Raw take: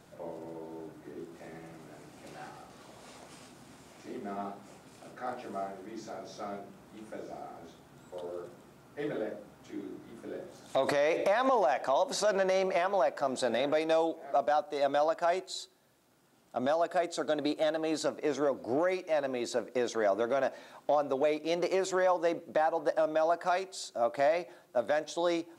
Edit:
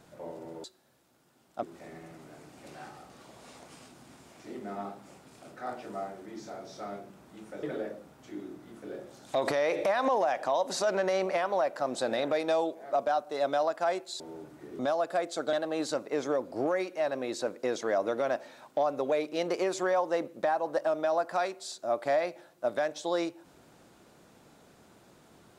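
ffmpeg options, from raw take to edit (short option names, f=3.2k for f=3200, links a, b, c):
-filter_complex "[0:a]asplit=7[a][b][c][d][e][f][g];[a]atrim=end=0.642[h];[b]atrim=start=15.608:end=16.602[i];[c]atrim=start=1.228:end=7.232[j];[d]atrim=start=9.038:end=15.612[k];[e]atrim=start=0.638:end=1.232[l];[f]atrim=start=16.598:end=17.342[m];[g]atrim=start=17.648[n];[h][i]acrossfade=d=0.004:c1=hsin:c2=hsin[o];[o][j]acrossfade=d=0.004:c1=hsin:c2=hsin[p];[p][k]acrossfade=d=0.004:c1=hsin:c2=hsin[q];[q][l]acrossfade=d=0.004:c1=hsin:c2=hsin[r];[r][m]acrossfade=d=0.004:c1=hsin:c2=hsin[s];[s][n]acrossfade=d=0.004:c1=hsin:c2=hsin"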